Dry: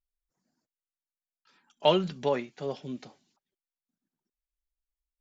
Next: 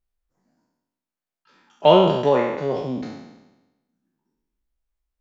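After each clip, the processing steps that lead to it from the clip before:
peak hold with a decay on every bin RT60 1.05 s
high-shelf EQ 2,200 Hz −11 dB
level +8.5 dB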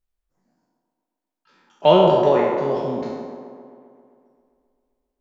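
delay with a band-pass on its return 132 ms, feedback 68%, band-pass 590 Hz, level −4 dB
on a send at −15.5 dB: convolution reverb RT60 0.40 s, pre-delay 5 ms
on the sum: level −1 dB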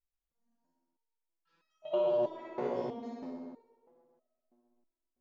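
downward compressor 6 to 1, threshold −19 dBFS, peak gain reduction 10.5 dB
on a send: flutter between parallel walls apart 10.6 metres, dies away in 0.72 s
on the sum: step-sequenced resonator 3.1 Hz 61–640 Hz
level −4.5 dB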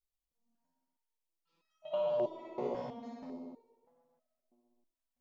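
auto-filter notch square 0.91 Hz 370–1,600 Hz
level −1.5 dB

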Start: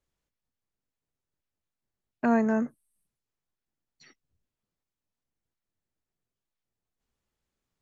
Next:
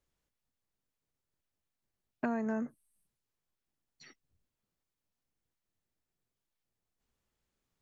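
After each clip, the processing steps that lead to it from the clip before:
downward compressor 5 to 1, threshold −31 dBFS, peak gain reduction 12 dB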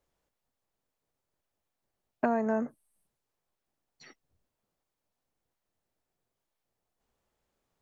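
parametric band 670 Hz +8.5 dB 1.8 octaves
level +1 dB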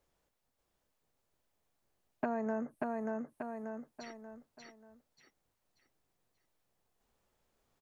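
on a send: repeating echo 585 ms, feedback 33%, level −4 dB
on the sum: downward compressor 2 to 1, threshold −40 dBFS, peak gain reduction 10 dB
level +1.5 dB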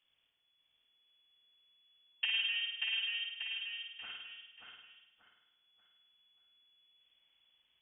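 flutter between parallel walls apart 8.9 metres, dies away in 0.92 s
voice inversion scrambler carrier 3,400 Hz
level −1 dB

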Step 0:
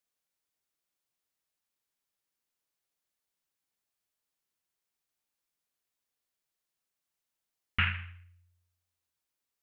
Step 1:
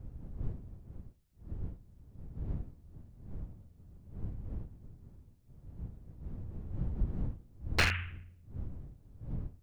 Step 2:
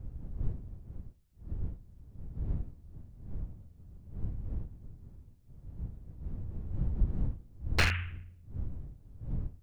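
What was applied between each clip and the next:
wavefolder on the positive side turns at −27 dBFS; wind on the microphone 99 Hz −43 dBFS; level +2.5 dB
low-shelf EQ 110 Hz +5 dB

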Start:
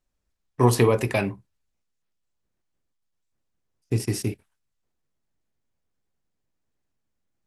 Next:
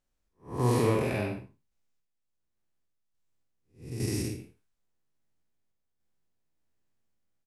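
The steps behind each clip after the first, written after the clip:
spectrum smeared in time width 200 ms
sample-and-hold tremolo
double-tracking delay 48 ms −6 dB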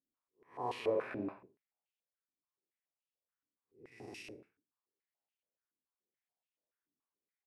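band-pass on a step sequencer 7 Hz 290–2,800 Hz
level +1 dB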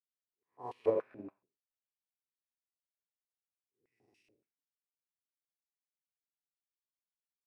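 expander for the loud parts 2.5 to 1, over −49 dBFS
level +5.5 dB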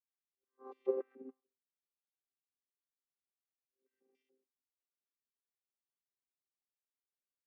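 channel vocoder with a chord as carrier bare fifth, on C4
level −3 dB

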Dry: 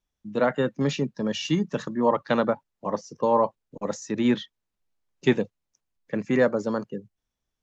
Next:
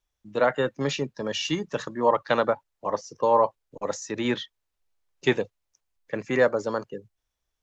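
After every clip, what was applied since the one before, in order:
parametric band 200 Hz −11.5 dB 1.2 octaves
level +2.5 dB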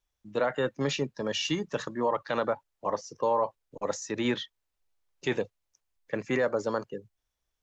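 brickwall limiter −16 dBFS, peak gain reduction 8 dB
level −1.5 dB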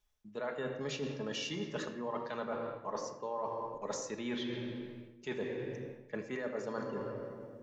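rectangular room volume 3,500 cubic metres, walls mixed, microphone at 1.4 metres
reversed playback
downward compressor 6 to 1, threshold −37 dBFS, peak gain reduction 16 dB
reversed playback
level +1 dB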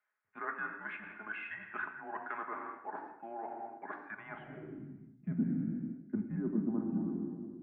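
single-sideband voice off tune −220 Hz 360–2,500 Hz
band-pass filter sweep 1,600 Hz → 220 Hz, 0:04.07–0:04.96
level +10.5 dB

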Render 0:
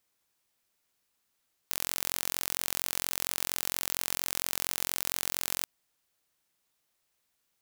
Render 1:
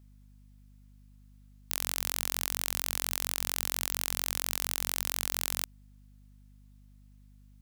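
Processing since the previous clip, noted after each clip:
mains hum 50 Hz, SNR 20 dB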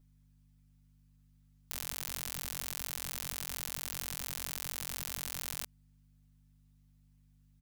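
comb filter 6.8 ms, depth 88%
level −9 dB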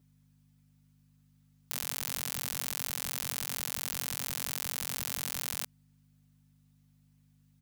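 high-pass filter 100 Hz 12 dB per octave
level +4 dB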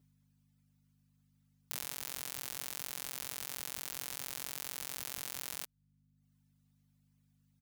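reverb reduction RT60 0.77 s
level −4 dB

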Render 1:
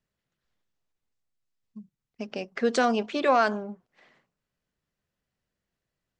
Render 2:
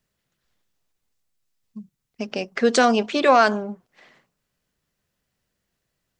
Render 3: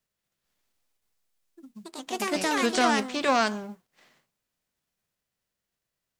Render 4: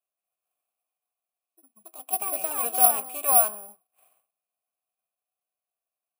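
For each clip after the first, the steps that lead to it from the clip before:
high-shelf EQ 4,200 Hz +5.5 dB; level +6 dB
spectral envelope flattened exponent 0.6; delay with pitch and tempo change per echo 234 ms, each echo +4 semitones, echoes 2; level −8 dB
wrap-around overflow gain 10.5 dB; formant filter a; bad sample-rate conversion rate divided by 4×, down none, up zero stuff; level +3.5 dB

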